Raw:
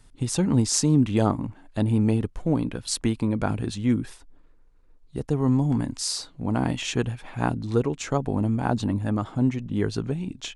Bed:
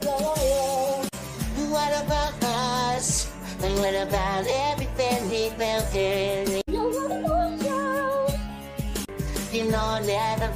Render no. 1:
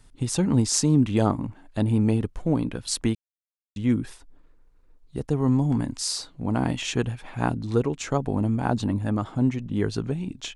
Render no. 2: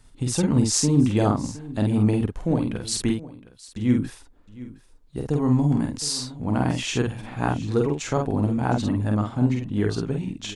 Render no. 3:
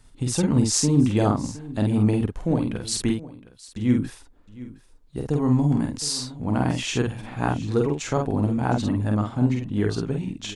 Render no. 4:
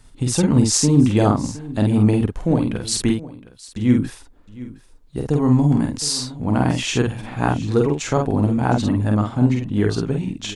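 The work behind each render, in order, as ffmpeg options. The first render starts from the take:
-filter_complex "[0:a]asplit=3[a][b][c];[a]atrim=end=3.15,asetpts=PTS-STARTPTS,afade=t=out:st=3.146:d=0.004:c=hsin[d];[b]atrim=start=3.15:end=3.76,asetpts=PTS-STARTPTS,volume=0[e];[c]atrim=start=3.76,asetpts=PTS-STARTPTS,afade=t=in:d=0.004:c=hsin[f];[d][e][f]concat=n=3:v=0:a=1"
-filter_complex "[0:a]asplit=2[a][b];[b]adelay=48,volume=-3.5dB[c];[a][c]amix=inputs=2:normalize=0,aecho=1:1:714:0.126"
-af anull
-af "volume=4.5dB,alimiter=limit=-2dB:level=0:latency=1"

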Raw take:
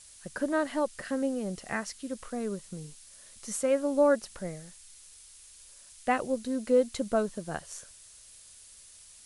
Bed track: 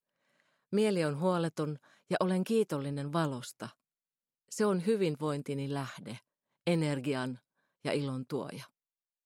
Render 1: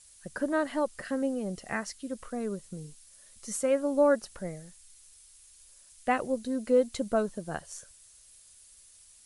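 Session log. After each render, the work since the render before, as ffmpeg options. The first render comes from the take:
-af "afftdn=nr=6:nf=-53"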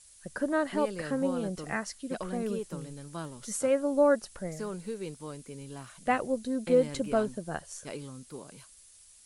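-filter_complex "[1:a]volume=-8dB[a];[0:a][a]amix=inputs=2:normalize=0"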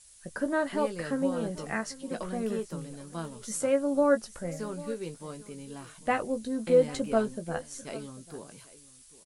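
-filter_complex "[0:a]asplit=2[a][b];[b]adelay=18,volume=-9dB[c];[a][c]amix=inputs=2:normalize=0,aecho=1:1:794:0.112"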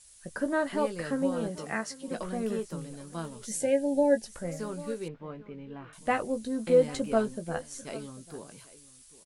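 -filter_complex "[0:a]asettb=1/sr,asplit=3[a][b][c];[a]atrim=end=1.484[d];[b]atrim=start=1.48:end=2.08,asetpts=PTS-STARTPTS,afade=t=in:d=0.004:c=qsin,afade=t=out:st=0.596:d=0.004:c=qsin,highpass=f=130:p=1[e];[c]atrim=start=2.076[f];[d][e]acrossfade=d=0.004:c1=hsin:c2=qsin[g];[g][f]acrossfade=d=0.004:c1=qsin:c2=hsin,asettb=1/sr,asplit=3[h][i][j];[h]atrim=end=3.464[k];[i]atrim=start=3.46:end=4.26,asetpts=PTS-STARTPTS,afade=t=in:d=0.004:c=qsin,afade=t=out:st=0.796:d=0.004:c=qsin,asuperstop=centerf=1200:order=12:qfactor=1.9[l];[j]atrim=start=4.256[m];[k][l]acrossfade=d=0.004:c1=hsin:c2=qsin[n];[n][m]acrossfade=d=0.004:c1=qsin:c2=hsin,asettb=1/sr,asplit=3[o][p][q];[o]atrim=end=5.084[r];[p]atrim=start=5.08:end=5.93,asetpts=PTS-STARTPTS,afade=t=in:d=0.004:c=qsin,afade=t=out:st=0.846:d=0.004:c=qsin,lowpass=f=2.7k:w=0.5412,lowpass=f=2.7k:w=1.3066[s];[q]atrim=start=5.926[t];[r][s]acrossfade=d=0.004:c1=hsin:c2=qsin[u];[u][t]acrossfade=d=0.004:c1=qsin:c2=hsin"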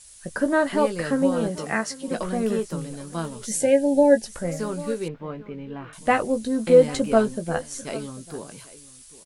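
-af "volume=7.5dB"

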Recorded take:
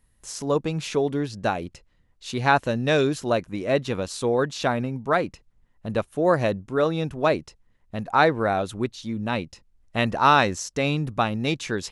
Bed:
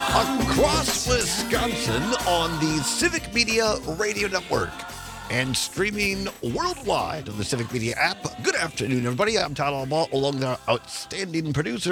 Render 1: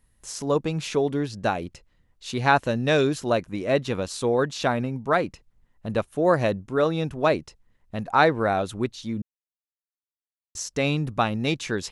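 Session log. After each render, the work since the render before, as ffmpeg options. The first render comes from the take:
-filter_complex "[0:a]asplit=3[a][b][c];[a]atrim=end=9.22,asetpts=PTS-STARTPTS,afade=t=out:st=9.216:d=0.004:c=hsin[d];[b]atrim=start=9.22:end=10.55,asetpts=PTS-STARTPTS,volume=0[e];[c]atrim=start=10.55,asetpts=PTS-STARTPTS,afade=t=in:d=0.004:c=hsin[f];[d][e][f]concat=n=3:v=0:a=1"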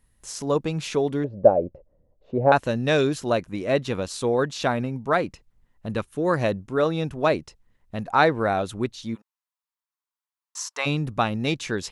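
-filter_complex "[0:a]asettb=1/sr,asplit=3[a][b][c];[a]atrim=end=1.244[d];[b]atrim=start=1.24:end=2.52,asetpts=PTS-STARTPTS,afade=t=in:d=0.004:c=qsin,afade=t=out:st=1.276:d=0.004:c=qsin,lowpass=f=570:t=q:w=6.4[e];[c]atrim=start=2.516[f];[d][e]acrossfade=d=0.004:c1=hsin:c2=qsin[g];[g][f]acrossfade=d=0.004:c1=qsin:c2=hsin,asettb=1/sr,asplit=3[h][i][j];[h]atrim=end=5.934[k];[i]atrim=start=5.93:end=6.37,asetpts=PTS-STARTPTS,afade=t=in:d=0.004:c=qsin,afade=t=out:st=0.436:d=0.004:c=qsin,equalizer=f=660:w=3.1:g=-11[l];[j]atrim=start=6.366[m];[k][l]acrossfade=d=0.004:c1=hsin:c2=qsin[n];[n][m]acrossfade=d=0.004:c1=qsin:c2=hsin,asplit=3[o][p][q];[o]afade=t=out:st=9.14:d=0.02[r];[p]highpass=f=1k:t=q:w=3.9,afade=t=in:st=9.14:d=0.02,afade=t=out:st=10.85:d=0.02[s];[q]afade=t=in:st=10.85:d=0.02[t];[r][s][t]amix=inputs=3:normalize=0"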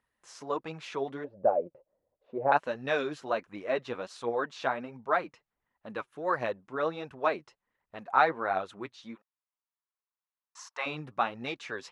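-af "bandpass=f=1.2k:t=q:w=0.73:csg=0,flanger=delay=0:depth=8.4:regen=30:speed=1.4:shape=triangular"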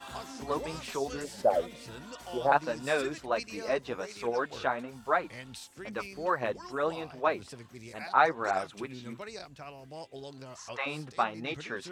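-filter_complex "[1:a]volume=-21dB[a];[0:a][a]amix=inputs=2:normalize=0"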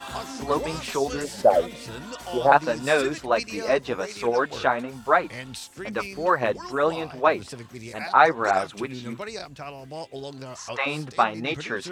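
-af "volume=8dB,alimiter=limit=-3dB:level=0:latency=1"

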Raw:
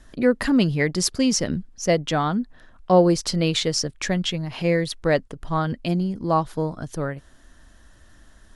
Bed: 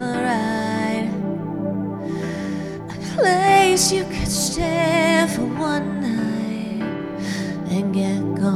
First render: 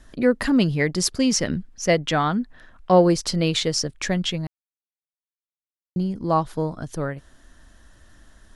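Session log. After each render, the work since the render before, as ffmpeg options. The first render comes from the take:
-filter_complex "[0:a]asettb=1/sr,asplit=3[a][b][c];[a]atrim=end=1.304[d];[b]atrim=start=1.3:end=3.13,asetpts=PTS-STARTPTS,afade=t=in:d=0.004:c=qsin,afade=t=out:st=1.826:d=0.004:c=qsin,equalizer=f=2k:w=0.92:g=4.5[e];[c]atrim=start=3.126[f];[d][e]acrossfade=d=0.004:c1=hsin:c2=qsin[g];[g][f]acrossfade=d=0.004:c1=qsin:c2=hsin,asplit=3[h][i][j];[h]atrim=end=4.47,asetpts=PTS-STARTPTS,afade=t=out:st=4.466:d=0.004:c=hsin[k];[i]atrim=start=4.47:end=5.96,asetpts=PTS-STARTPTS,volume=0[l];[j]atrim=start=5.96,asetpts=PTS-STARTPTS,afade=t=in:d=0.004:c=hsin[m];[k][l][m]concat=n=3:v=0:a=1"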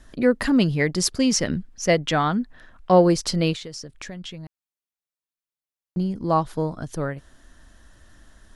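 -filter_complex "[0:a]asettb=1/sr,asplit=3[a][b][c];[a]atrim=end=3.534[d];[b]atrim=start=3.53:end=5.97,asetpts=PTS-STARTPTS,afade=t=in:d=0.004:c=qsin,afade=t=out:st=2.436:d=0.004:c=qsin,acompressor=threshold=-35dB:ratio=4:attack=3.2:release=140:knee=1:detection=peak[e];[c]atrim=start=5.966[f];[d][e]acrossfade=d=0.004:c1=hsin:c2=qsin[g];[g][f]acrossfade=d=0.004:c1=qsin:c2=hsin"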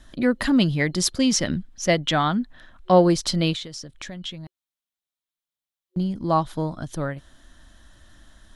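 -af "superequalizer=7b=0.562:13b=1.78"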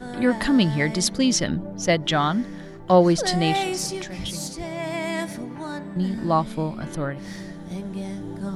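-filter_complex "[1:a]volume=-11dB[a];[0:a][a]amix=inputs=2:normalize=0"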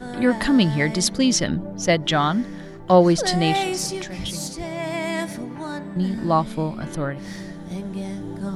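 -af "volume=1.5dB"

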